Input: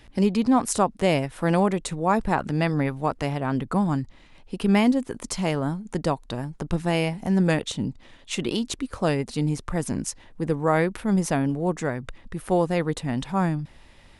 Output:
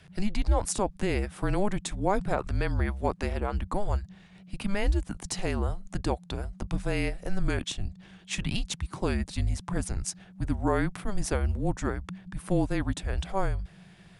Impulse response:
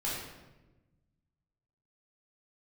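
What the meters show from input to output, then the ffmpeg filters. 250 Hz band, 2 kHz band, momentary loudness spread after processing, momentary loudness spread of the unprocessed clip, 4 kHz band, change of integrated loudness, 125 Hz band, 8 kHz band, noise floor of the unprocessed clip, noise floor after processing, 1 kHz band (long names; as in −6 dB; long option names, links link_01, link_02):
−9.0 dB, −5.0 dB, 9 LU, 10 LU, −4.5 dB, −6.0 dB, −4.0 dB, −3.0 dB, −52 dBFS, −54 dBFS, −7.5 dB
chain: -af "alimiter=limit=-12.5dB:level=0:latency=1:release=67,afreqshift=-200,volume=-2.5dB"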